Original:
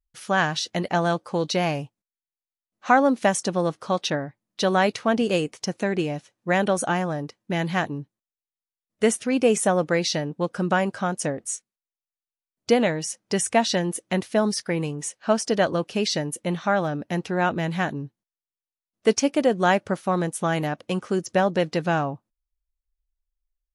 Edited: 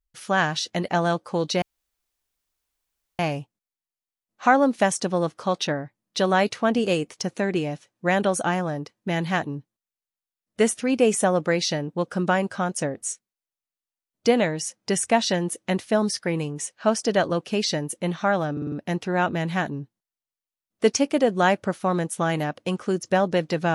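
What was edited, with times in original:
1.62 insert room tone 1.57 s
16.95 stutter 0.05 s, 5 plays

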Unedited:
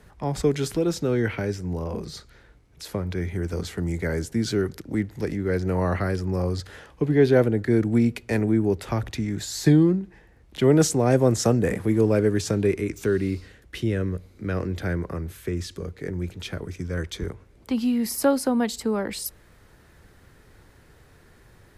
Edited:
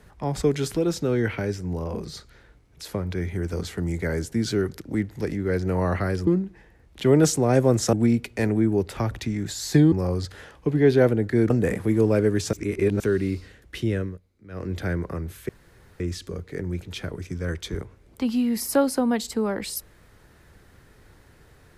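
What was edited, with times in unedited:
6.27–7.85 swap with 9.84–11.5
12.53–13 reverse
13.96–14.73 dip -17.5 dB, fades 0.24 s
15.49 insert room tone 0.51 s

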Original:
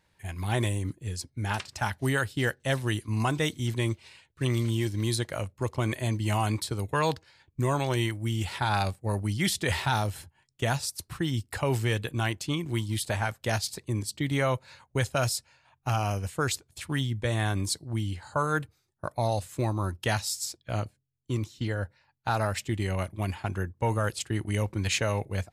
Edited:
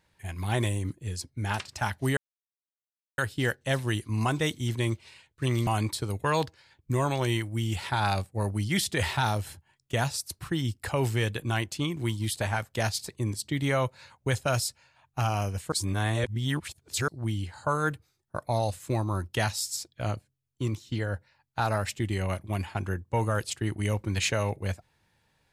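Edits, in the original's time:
2.17 insert silence 1.01 s
4.66–6.36 cut
16.41–17.77 reverse

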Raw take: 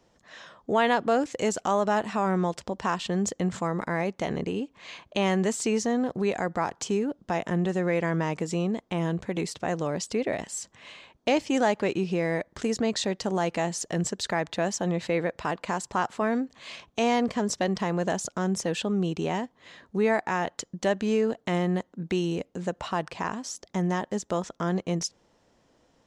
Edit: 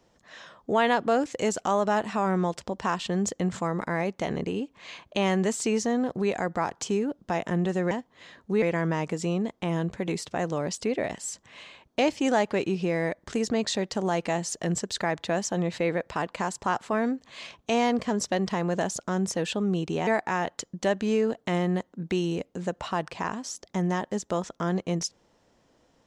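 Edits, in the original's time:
19.36–20.07 move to 7.91

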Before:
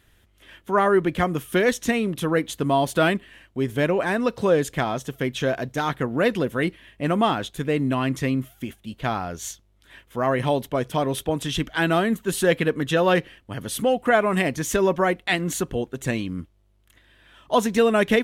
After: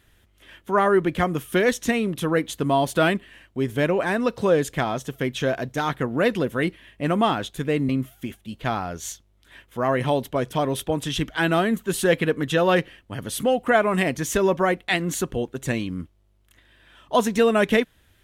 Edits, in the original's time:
7.89–8.28 cut

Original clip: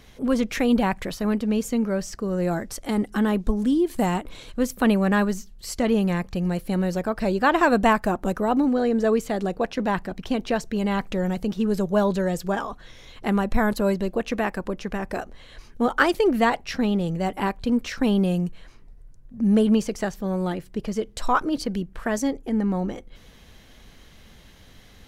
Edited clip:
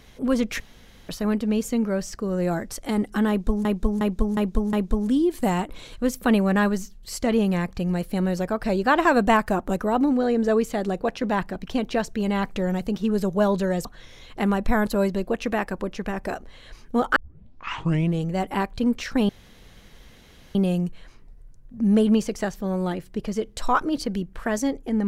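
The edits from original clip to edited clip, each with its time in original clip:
0.6–1.09 room tone
3.29–3.65 loop, 5 plays
12.41–12.71 cut
16.02 tape start 1.09 s
18.15 insert room tone 1.26 s

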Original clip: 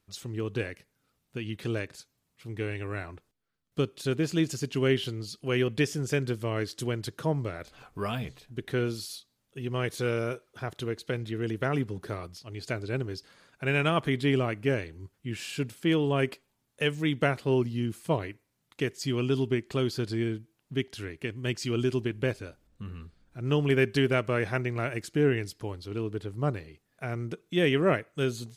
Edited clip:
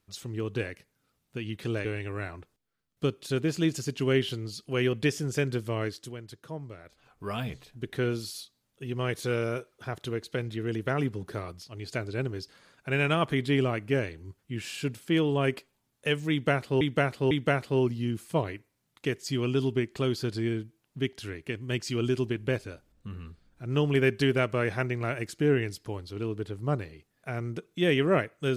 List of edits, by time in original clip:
1.85–2.6 cut
6.55–8.16 dip -10.5 dB, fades 0.33 s
17.06–17.56 loop, 3 plays

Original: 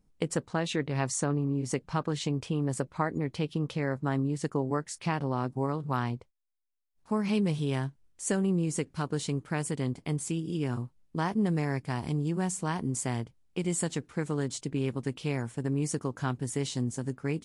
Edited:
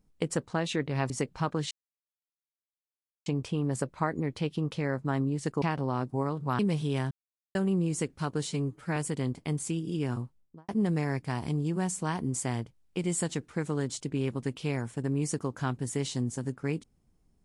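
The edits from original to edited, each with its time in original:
1.1–1.63 cut
2.24 insert silence 1.55 s
4.6–5.05 cut
6.02–7.36 cut
7.88–8.32 mute
9.24–9.57 stretch 1.5×
10.83–11.29 studio fade out

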